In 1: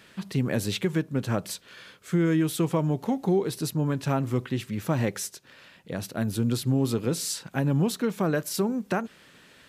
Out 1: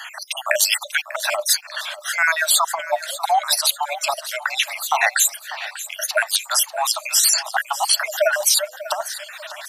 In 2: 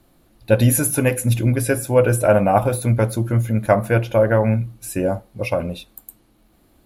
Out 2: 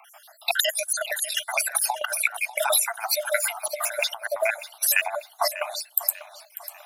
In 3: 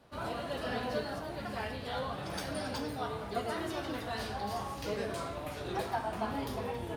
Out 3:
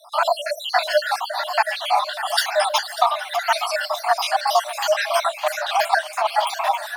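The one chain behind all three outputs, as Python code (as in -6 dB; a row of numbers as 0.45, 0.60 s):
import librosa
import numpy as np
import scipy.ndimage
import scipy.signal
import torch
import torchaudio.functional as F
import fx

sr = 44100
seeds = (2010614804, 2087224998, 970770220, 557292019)

y = fx.spec_dropout(x, sr, seeds[0], share_pct=59)
y = fx.dereverb_blind(y, sr, rt60_s=0.66)
y = scipy.signal.sosfilt(scipy.signal.cheby1(10, 1.0, 600.0, 'highpass', fs=sr, output='sos'), y)
y = fx.over_compress(y, sr, threshold_db=-37.0, ratio=-0.5)
y = fx.echo_feedback(y, sr, ms=594, feedback_pct=42, wet_db=-15)
y = librosa.util.normalize(y) * 10.0 ** (-1.5 / 20.0)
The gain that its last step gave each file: +21.5, +11.5, +23.5 dB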